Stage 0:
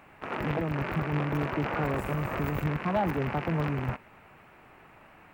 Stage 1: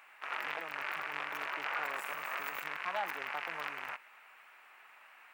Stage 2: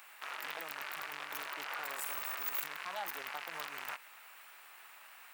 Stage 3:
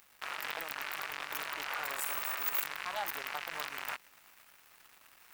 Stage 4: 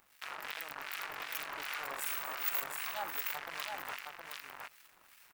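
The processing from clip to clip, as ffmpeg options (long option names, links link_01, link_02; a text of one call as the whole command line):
ffmpeg -i in.wav -af "highpass=1300,volume=1dB" out.wav
ffmpeg -i in.wav -af "alimiter=level_in=7dB:limit=-24dB:level=0:latency=1:release=98,volume=-7dB,aexciter=amount=3.2:drive=5.9:freq=3400,volume=1dB" out.wav
ffmpeg -i in.wav -af "areverse,acompressor=mode=upward:threshold=-51dB:ratio=2.5,areverse,aeval=exprs='sgn(val(0))*max(abs(val(0))-0.00224,0)':channel_layout=same,volume=5dB" out.wav
ffmpeg -i in.wav -filter_complex "[0:a]acrossover=split=1500[link_01][link_02];[link_01]aeval=exprs='val(0)*(1-0.7/2+0.7/2*cos(2*PI*2.6*n/s))':channel_layout=same[link_03];[link_02]aeval=exprs='val(0)*(1-0.7/2-0.7/2*cos(2*PI*2.6*n/s))':channel_layout=same[link_04];[link_03][link_04]amix=inputs=2:normalize=0,aecho=1:1:716:0.631" out.wav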